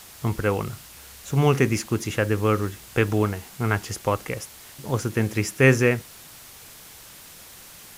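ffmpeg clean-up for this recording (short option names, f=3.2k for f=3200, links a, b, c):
-af "adeclick=t=4,afwtdn=0.0063"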